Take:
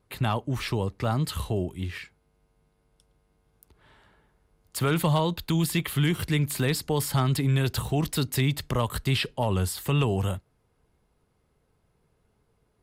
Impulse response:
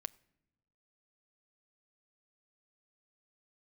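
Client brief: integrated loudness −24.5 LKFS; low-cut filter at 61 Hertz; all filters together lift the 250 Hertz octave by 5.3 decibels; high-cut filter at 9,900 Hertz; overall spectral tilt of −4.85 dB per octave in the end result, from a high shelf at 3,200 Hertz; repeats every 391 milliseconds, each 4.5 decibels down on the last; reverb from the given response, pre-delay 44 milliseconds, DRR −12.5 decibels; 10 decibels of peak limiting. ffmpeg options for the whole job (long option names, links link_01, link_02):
-filter_complex "[0:a]highpass=61,lowpass=9900,equalizer=frequency=250:width_type=o:gain=8,highshelf=frequency=3200:gain=5.5,alimiter=limit=-20dB:level=0:latency=1,aecho=1:1:391|782|1173|1564|1955|2346|2737|3128|3519:0.596|0.357|0.214|0.129|0.0772|0.0463|0.0278|0.0167|0.01,asplit=2[link_01][link_02];[1:a]atrim=start_sample=2205,adelay=44[link_03];[link_02][link_03]afir=irnorm=-1:irlink=0,volume=15.5dB[link_04];[link_01][link_04]amix=inputs=2:normalize=0,volume=-9dB"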